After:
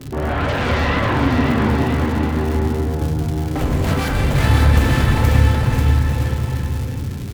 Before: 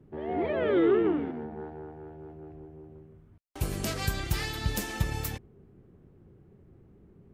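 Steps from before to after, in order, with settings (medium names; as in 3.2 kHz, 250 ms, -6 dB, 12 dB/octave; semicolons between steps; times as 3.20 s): median filter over 9 samples; crackle 140 per s -40 dBFS; in parallel at +2 dB: compression, threshold -35 dBFS, peak gain reduction 14.5 dB; on the sum: sine folder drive 15 dB, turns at -12.5 dBFS; bouncing-ball echo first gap 540 ms, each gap 0.8×, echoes 5; on a send at -4.5 dB: reverberation RT60 1.2 s, pre-delay 3 ms; 3.01–3.87 s: on the sum: three bands compressed up and down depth 70%; trim -7.5 dB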